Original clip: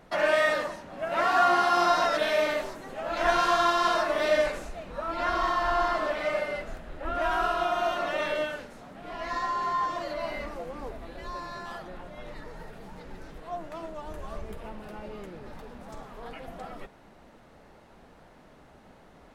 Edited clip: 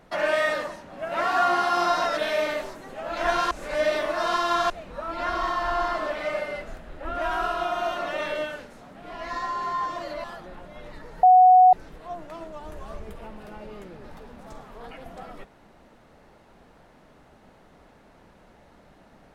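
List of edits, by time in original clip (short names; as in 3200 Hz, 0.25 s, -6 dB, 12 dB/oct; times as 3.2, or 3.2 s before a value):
3.51–4.7 reverse
10.24–11.66 cut
12.65–13.15 bleep 738 Hz -10 dBFS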